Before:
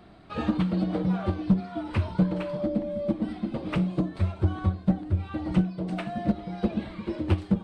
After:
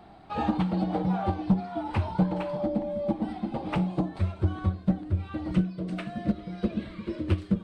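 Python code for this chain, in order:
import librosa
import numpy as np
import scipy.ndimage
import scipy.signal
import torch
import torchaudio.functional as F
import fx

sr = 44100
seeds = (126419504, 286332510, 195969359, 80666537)

y = fx.peak_eq(x, sr, hz=820.0, db=fx.steps((0.0, 14.0), (4.19, -2.0), (5.51, -13.0)), octaves=0.32)
y = F.gain(torch.from_numpy(y), -1.5).numpy()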